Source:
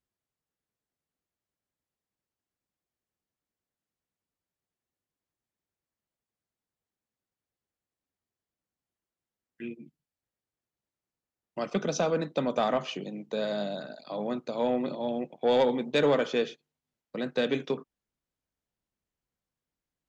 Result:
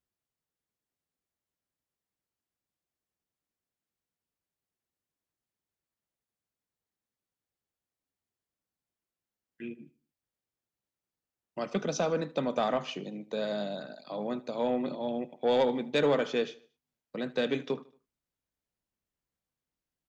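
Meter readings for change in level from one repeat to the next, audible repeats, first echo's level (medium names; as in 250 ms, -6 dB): -7.0 dB, 3, -20.5 dB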